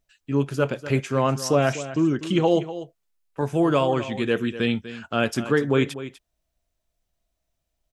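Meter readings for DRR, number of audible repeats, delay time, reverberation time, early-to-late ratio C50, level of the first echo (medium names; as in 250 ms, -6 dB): no reverb, 1, 246 ms, no reverb, no reverb, -13.5 dB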